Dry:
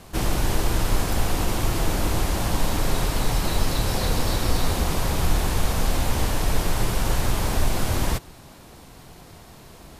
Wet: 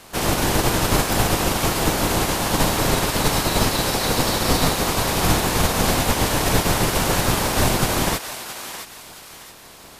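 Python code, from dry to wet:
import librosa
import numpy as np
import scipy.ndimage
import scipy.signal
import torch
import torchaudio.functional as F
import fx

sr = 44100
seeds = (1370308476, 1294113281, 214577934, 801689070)

y = fx.spec_clip(x, sr, under_db=17)
y = fx.echo_thinned(y, sr, ms=668, feedback_pct=36, hz=1100.0, wet_db=-8.5)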